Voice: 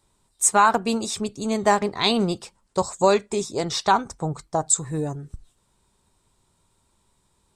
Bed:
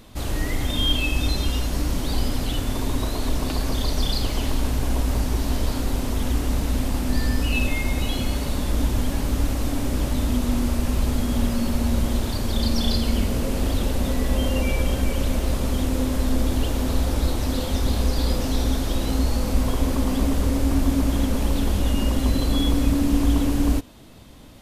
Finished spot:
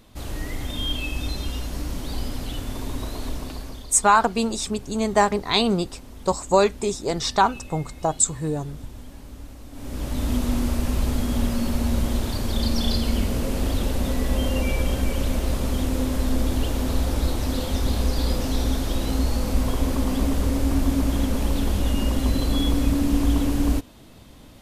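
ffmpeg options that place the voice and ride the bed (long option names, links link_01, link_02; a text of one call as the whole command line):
ffmpeg -i stem1.wav -i stem2.wav -filter_complex "[0:a]adelay=3500,volume=0.5dB[link_01];[1:a]volume=11dB,afade=type=out:start_time=3.25:duration=0.64:silence=0.251189,afade=type=in:start_time=9.71:duration=0.62:silence=0.149624[link_02];[link_01][link_02]amix=inputs=2:normalize=0" out.wav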